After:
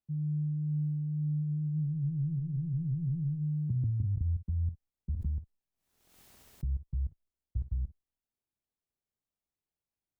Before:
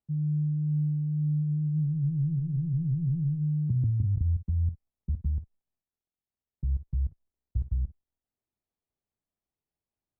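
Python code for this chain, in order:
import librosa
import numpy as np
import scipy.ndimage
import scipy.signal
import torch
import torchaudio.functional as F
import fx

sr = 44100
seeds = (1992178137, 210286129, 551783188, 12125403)

y = fx.pre_swell(x, sr, db_per_s=64.0, at=(5.16, 6.79))
y = y * librosa.db_to_amplitude(-4.5)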